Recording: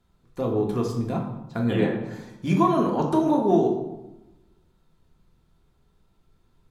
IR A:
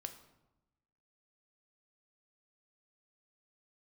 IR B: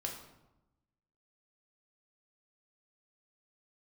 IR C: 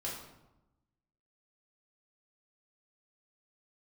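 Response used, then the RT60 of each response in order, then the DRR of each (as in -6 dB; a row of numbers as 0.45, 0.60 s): B; 0.95, 0.95, 0.95 s; 6.5, 0.0, -6.0 dB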